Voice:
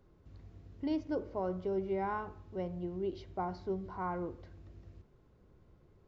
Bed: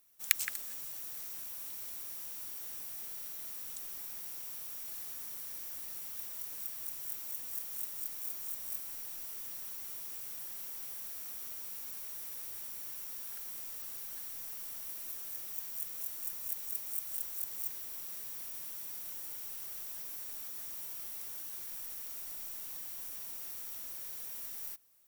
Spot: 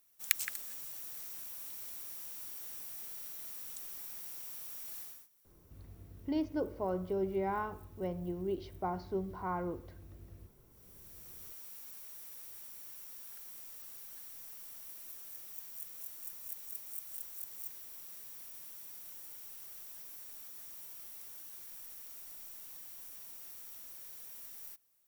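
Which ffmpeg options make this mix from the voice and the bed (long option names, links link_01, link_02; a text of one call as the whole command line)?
ffmpeg -i stem1.wav -i stem2.wav -filter_complex "[0:a]adelay=5450,volume=0.5dB[link_01];[1:a]volume=18dB,afade=type=out:start_time=4.99:duration=0.29:silence=0.0630957,afade=type=in:start_time=10.69:duration=0.79:silence=0.1[link_02];[link_01][link_02]amix=inputs=2:normalize=0" out.wav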